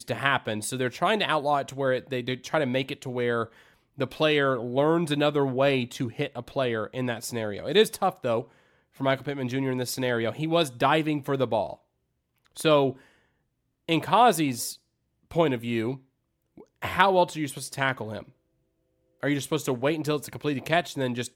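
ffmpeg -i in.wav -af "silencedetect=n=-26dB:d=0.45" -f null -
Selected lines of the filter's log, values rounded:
silence_start: 3.43
silence_end: 4.00 | silence_duration: 0.58
silence_start: 8.40
silence_end: 9.01 | silence_duration: 0.61
silence_start: 11.70
silence_end: 12.60 | silence_duration: 0.89
silence_start: 12.90
silence_end: 13.89 | silence_duration: 0.98
silence_start: 14.70
silence_end: 15.36 | silence_duration: 0.65
silence_start: 15.92
silence_end: 16.83 | silence_duration: 0.91
silence_start: 18.18
silence_end: 19.23 | silence_duration: 1.05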